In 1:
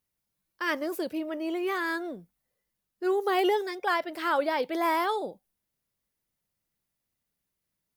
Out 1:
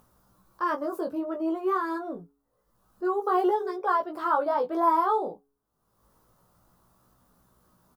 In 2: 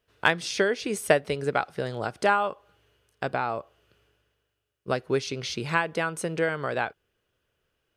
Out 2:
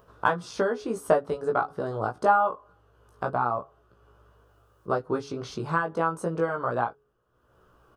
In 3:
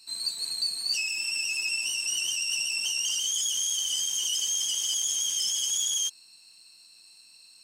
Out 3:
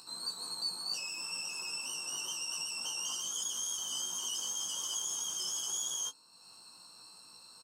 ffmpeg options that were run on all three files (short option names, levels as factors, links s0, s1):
-filter_complex "[0:a]highshelf=f=1600:t=q:w=3:g=-10,asplit=2[s0][s1];[s1]acompressor=threshold=0.0251:ratio=6,volume=0.841[s2];[s0][s2]amix=inputs=2:normalize=0,asplit=2[s3][s4];[s4]adelay=16,volume=0.224[s5];[s3][s5]amix=inputs=2:normalize=0,acompressor=mode=upward:threshold=0.00708:ratio=2.5,bandreject=f=140.3:t=h:w=4,bandreject=f=280.6:t=h:w=4,bandreject=f=420.9:t=h:w=4,flanger=delay=16.5:depth=2.1:speed=0.27"